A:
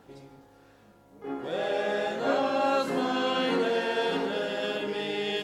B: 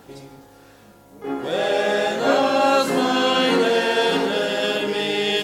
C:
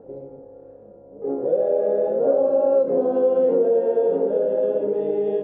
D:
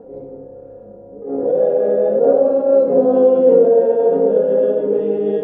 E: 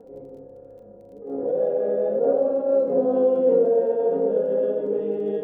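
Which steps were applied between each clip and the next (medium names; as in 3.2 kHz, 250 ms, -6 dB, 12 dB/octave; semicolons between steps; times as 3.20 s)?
treble shelf 4.6 kHz +8.5 dB; trim +8 dB
resonant low-pass 520 Hz, resonance Q 5.8; compression 2:1, threshold -17 dBFS, peak gain reduction 7.5 dB; trim -3.5 dB
simulated room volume 2200 m³, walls furnished, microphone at 1.8 m; attacks held to a fixed rise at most 100 dB/s; trim +4.5 dB
crackle 22 per s -42 dBFS; trim -7.5 dB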